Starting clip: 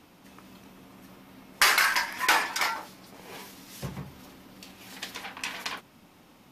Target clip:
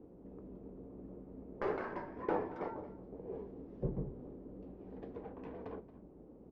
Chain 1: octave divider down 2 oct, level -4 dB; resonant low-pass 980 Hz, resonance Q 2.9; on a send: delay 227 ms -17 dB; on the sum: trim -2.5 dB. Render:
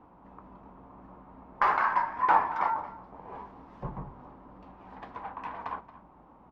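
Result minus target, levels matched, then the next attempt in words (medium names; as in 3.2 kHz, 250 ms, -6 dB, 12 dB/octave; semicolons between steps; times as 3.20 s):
500 Hz band -17.0 dB
octave divider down 2 oct, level -4 dB; resonant low-pass 440 Hz, resonance Q 2.9; on a send: delay 227 ms -17 dB; on the sum: trim -2.5 dB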